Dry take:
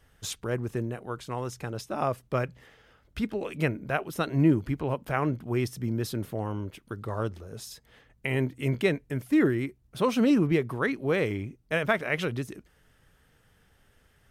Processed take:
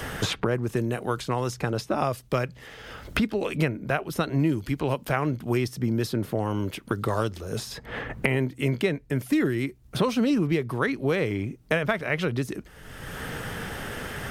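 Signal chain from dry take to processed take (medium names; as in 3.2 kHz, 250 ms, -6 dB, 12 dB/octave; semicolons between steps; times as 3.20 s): dynamic bell 4.6 kHz, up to +4 dB, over -56 dBFS, Q 2.3; three bands compressed up and down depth 100%; trim +2 dB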